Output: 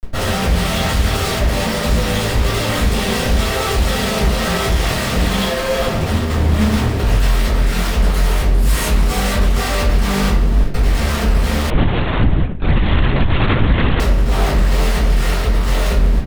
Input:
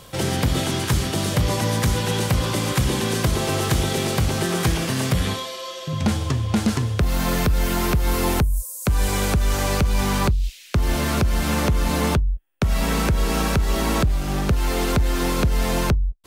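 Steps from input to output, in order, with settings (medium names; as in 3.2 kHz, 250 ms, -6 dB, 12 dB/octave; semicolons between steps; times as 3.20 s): hum notches 50/100/150/200/250/300/350/400/450 Hz; comb 1.5 ms, depth 57%; Chebyshev shaper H 8 -24 dB, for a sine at -7 dBFS; flange 0.84 Hz, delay 2.2 ms, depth 2.8 ms, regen -10%; Schmitt trigger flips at -36 dBFS; reverberation RT60 0.55 s, pre-delay 3 ms, DRR -13.5 dB; 11.70–14.00 s: LPC vocoder at 8 kHz whisper; loudspeaker Doppler distortion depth 0.23 ms; trim -9.5 dB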